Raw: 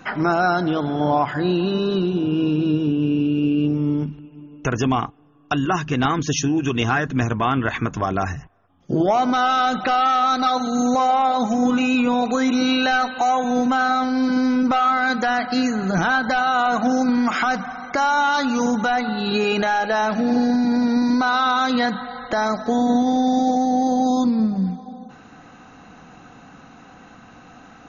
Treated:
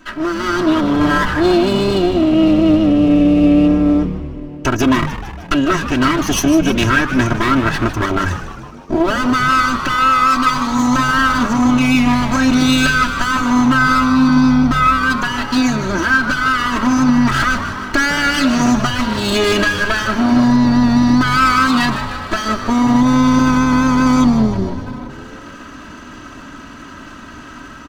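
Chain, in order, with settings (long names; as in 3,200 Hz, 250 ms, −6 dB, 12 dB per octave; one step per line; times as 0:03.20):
lower of the sound and its delayed copy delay 0.65 ms
comb filter 3.1 ms, depth 80%
automatic gain control
on a send: echo with shifted repeats 153 ms, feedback 61%, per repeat −110 Hz, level −11 dB
on the sum: level −2 dB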